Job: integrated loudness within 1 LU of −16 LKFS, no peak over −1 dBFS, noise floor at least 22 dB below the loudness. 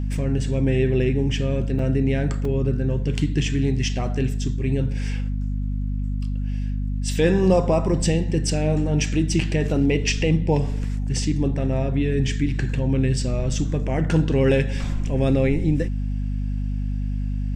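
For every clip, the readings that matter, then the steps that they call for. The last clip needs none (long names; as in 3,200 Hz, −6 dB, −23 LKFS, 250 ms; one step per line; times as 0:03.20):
number of dropouts 2; longest dropout 2.8 ms; mains hum 50 Hz; hum harmonics up to 250 Hz; level of the hum −22 dBFS; integrated loudness −23.0 LKFS; sample peak −6.0 dBFS; target loudness −16.0 LKFS
→ repair the gap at 0:01.79/0:02.45, 2.8 ms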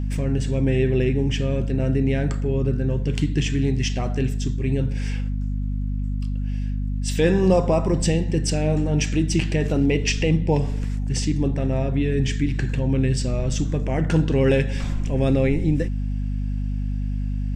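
number of dropouts 0; mains hum 50 Hz; hum harmonics up to 250 Hz; level of the hum −22 dBFS
→ hum removal 50 Hz, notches 5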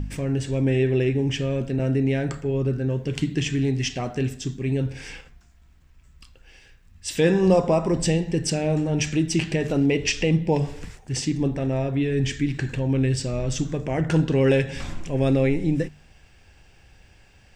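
mains hum none found; integrated loudness −23.5 LKFS; sample peak −6.5 dBFS; target loudness −16.0 LKFS
→ level +7.5 dB
brickwall limiter −1 dBFS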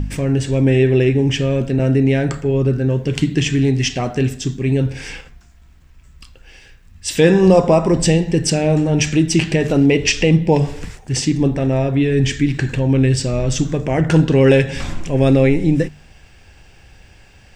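integrated loudness −16.0 LKFS; sample peak −1.0 dBFS; background noise floor −47 dBFS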